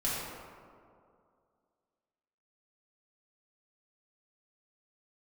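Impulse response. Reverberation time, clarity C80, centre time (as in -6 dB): 2.3 s, -0.5 dB, 0.131 s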